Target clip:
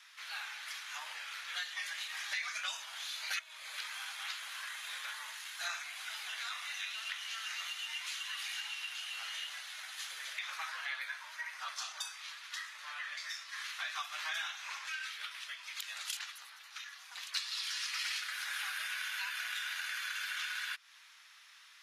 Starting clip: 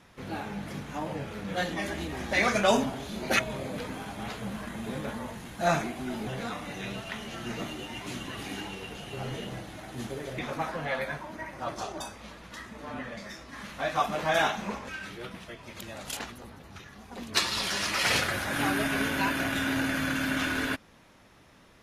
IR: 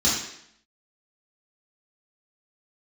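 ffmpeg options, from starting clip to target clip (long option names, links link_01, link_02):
-af "highpass=frequency=1300:width=0.5412,highpass=frequency=1300:width=1.3066,equalizer=frequency=4300:width_type=o:width=1.5:gain=5.5,acompressor=threshold=-38dB:ratio=5,volume=1dB"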